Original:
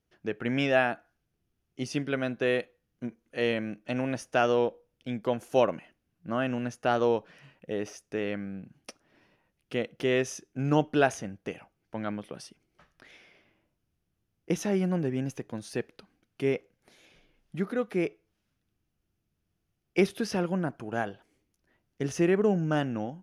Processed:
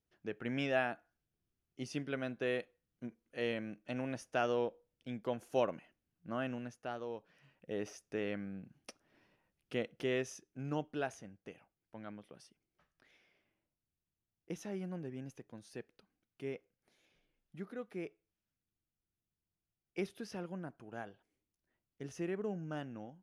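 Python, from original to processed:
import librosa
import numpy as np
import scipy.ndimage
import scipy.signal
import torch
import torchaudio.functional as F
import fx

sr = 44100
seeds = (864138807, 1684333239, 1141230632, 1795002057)

y = fx.gain(x, sr, db=fx.line((6.46, -9.0), (7.06, -18.5), (7.79, -6.5), (9.79, -6.5), (10.91, -14.5)))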